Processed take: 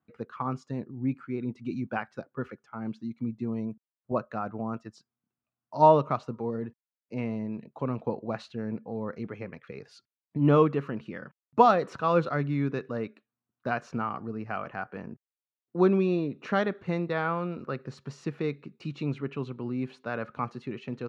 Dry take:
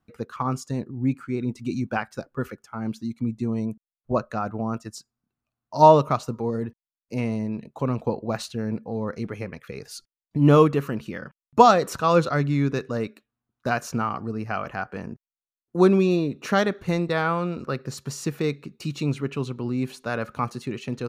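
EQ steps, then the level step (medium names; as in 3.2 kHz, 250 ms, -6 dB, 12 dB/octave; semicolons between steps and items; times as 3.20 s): band-pass 110–3000 Hz; -5.0 dB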